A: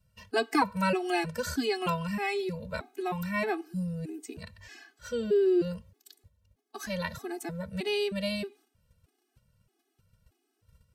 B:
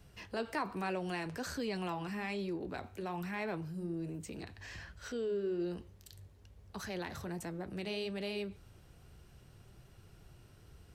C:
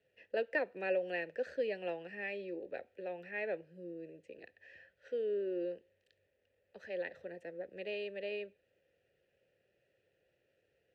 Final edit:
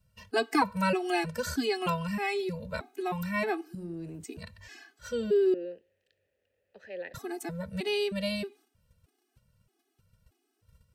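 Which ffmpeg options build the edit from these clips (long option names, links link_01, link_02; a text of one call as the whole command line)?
ffmpeg -i take0.wav -i take1.wav -i take2.wav -filter_complex "[0:a]asplit=3[link_01][link_02][link_03];[link_01]atrim=end=3.752[link_04];[1:a]atrim=start=3.748:end=4.242[link_05];[link_02]atrim=start=4.238:end=5.542[link_06];[2:a]atrim=start=5.538:end=7.142[link_07];[link_03]atrim=start=7.138[link_08];[link_04][link_05]acrossfade=duration=0.004:curve1=hsin:curve2=hsin[link_09];[link_09][link_06]acrossfade=duration=0.004:curve1=hsin:curve2=hsin[link_10];[link_10][link_07]acrossfade=duration=0.004:curve1=hsin:curve2=hsin[link_11];[link_11][link_08]acrossfade=duration=0.004:curve1=hsin:curve2=hsin" out.wav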